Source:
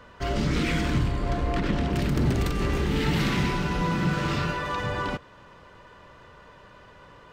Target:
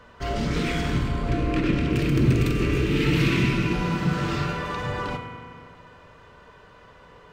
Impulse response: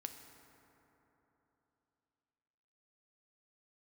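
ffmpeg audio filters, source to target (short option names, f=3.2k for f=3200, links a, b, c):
-filter_complex "[0:a]asettb=1/sr,asplit=3[a][b][c];[a]atrim=end=1.284[d];[b]atrim=start=1.28:end=3.73,asetpts=PTS-STARTPTS,afade=t=in:d=0.004:c=qsin,afade=t=out:st=2.446:d=0.004:c=qsin,equalizer=f=125:t=o:w=0.33:g=8,equalizer=f=315:t=o:w=0.33:g=11,equalizer=f=800:t=o:w=0.33:g=-12,equalizer=f=2.5k:t=o:w=0.33:g=9[e];[c]atrim=start=3.726[f];[d][e]acrossfade=d=0.004:c1=hsin:c2=qsin[g];[g][f]acrossfade=d=0.004:c1=qsin:c2=hsin[h];[1:a]atrim=start_sample=2205,asetrate=70560,aresample=44100[i];[h][i]afir=irnorm=-1:irlink=0,volume=7.5dB"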